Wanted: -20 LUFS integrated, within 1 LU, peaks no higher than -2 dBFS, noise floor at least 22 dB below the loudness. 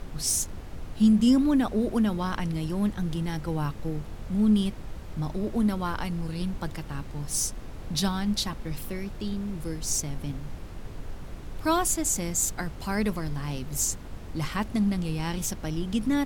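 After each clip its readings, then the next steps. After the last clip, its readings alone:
noise floor -40 dBFS; noise floor target -50 dBFS; loudness -28.0 LUFS; peak level -11.5 dBFS; loudness target -20.0 LUFS
-> noise print and reduce 10 dB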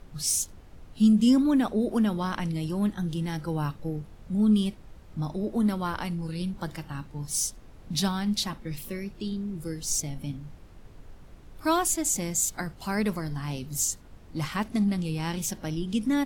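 noise floor -49 dBFS; noise floor target -50 dBFS
-> noise print and reduce 6 dB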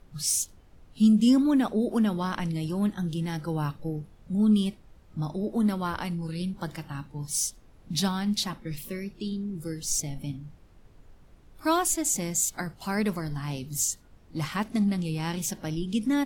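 noise floor -55 dBFS; loudness -28.0 LUFS; peak level -12.0 dBFS; loudness target -20.0 LUFS
-> trim +8 dB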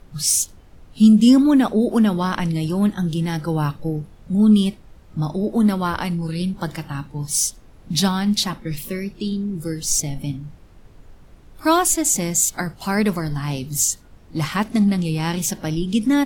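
loudness -20.0 LUFS; peak level -4.0 dBFS; noise floor -47 dBFS

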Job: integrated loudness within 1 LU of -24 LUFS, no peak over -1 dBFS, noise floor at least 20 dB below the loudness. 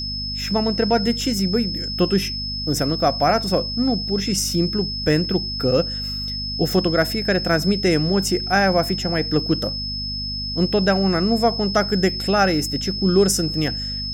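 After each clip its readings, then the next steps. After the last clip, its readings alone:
hum 50 Hz; highest harmonic 250 Hz; hum level -29 dBFS; steady tone 5.2 kHz; tone level -26 dBFS; loudness -20.0 LUFS; peak level -4.5 dBFS; loudness target -24.0 LUFS
-> de-hum 50 Hz, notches 5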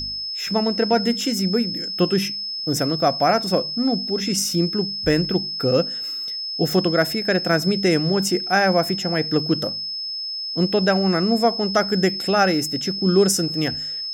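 hum not found; steady tone 5.2 kHz; tone level -26 dBFS
-> band-stop 5.2 kHz, Q 30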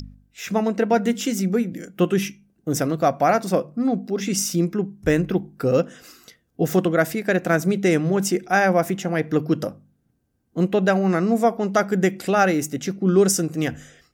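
steady tone not found; loudness -21.5 LUFS; peak level -5.0 dBFS; loudness target -24.0 LUFS
-> trim -2.5 dB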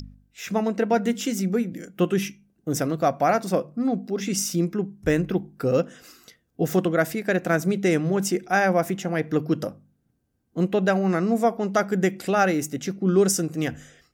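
loudness -24.0 LUFS; peak level -7.5 dBFS; noise floor -70 dBFS

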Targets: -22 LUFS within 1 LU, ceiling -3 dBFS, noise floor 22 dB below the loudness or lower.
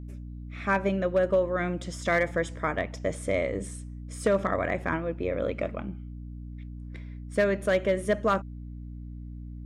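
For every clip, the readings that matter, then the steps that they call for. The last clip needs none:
clipped samples 0.2%; clipping level -16.0 dBFS; hum 60 Hz; highest harmonic 300 Hz; hum level -37 dBFS; loudness -28.0 LUFS; peak level -16.0 dBFS; loudness target -22.0 LUFS
-> clip repair -16 dBFS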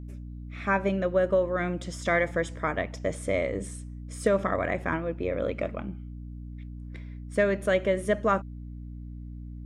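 clipped samples 0.0%; hum 60 Hz; highest harmonic 300 Hz; hum level -37 dBFS
-> hum notches 60/120/180/240/300 Hz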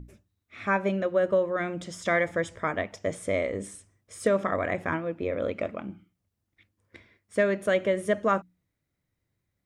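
hum not found; loudness -28.0 LUFS; peak level -11.5 dBFS; loudness target -22.0 LUFS
-> trim +6 dB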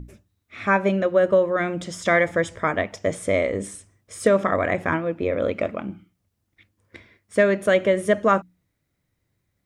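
loudness -22.0 LUFS; peak level -5.5 dBFS; noise floor -75 dBFS

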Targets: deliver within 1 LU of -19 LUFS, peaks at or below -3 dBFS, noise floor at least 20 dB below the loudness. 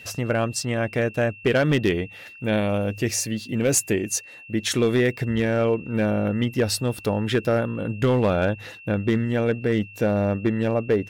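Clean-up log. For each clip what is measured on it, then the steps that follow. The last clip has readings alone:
clipped samples 0.8%; clipping level -13.0 dBFS; steady tone 2.7 kHz; tone level -42 dBFS; loudness -23.5 LUFS; peak level -13.0 dBFS; loudness target -19.0 LUFS
-> clip repair -13 dBFS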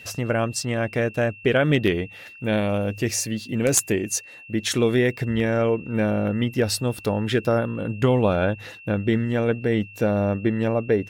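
clipped samples 0.0%; steady tone 2.7 kHz; tone level -42 dBFS
-> band-stop 2.7 kHz, Q 30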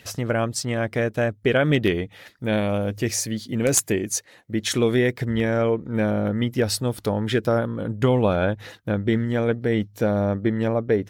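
steady tone not found; loudness -23.0 LUFS; peak level -4.0 dBFS; loudness target -19.0 LUFS
-> trim +4 dB; peak limiter -3 dBFS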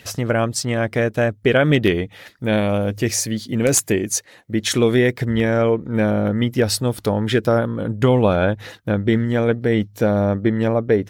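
loudness -19.5 LUFS; peak level -3.0 dBFS; noise floor -49 dBFS

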